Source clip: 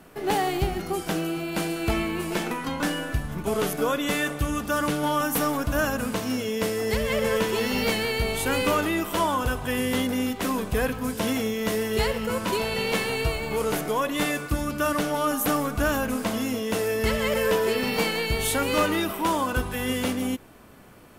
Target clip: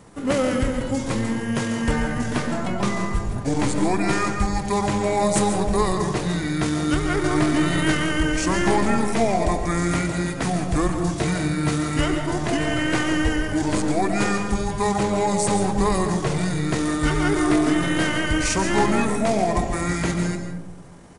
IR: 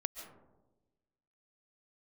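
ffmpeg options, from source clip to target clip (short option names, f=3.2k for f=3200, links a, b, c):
-filter_complex "[0:a]asetrate=30296,aresample=44100,atempo=1.45565[a];[1:a]atrim=start_sample=2205[b];[a][b]afir=irnorm=-1:irlink=0,volume=4dB"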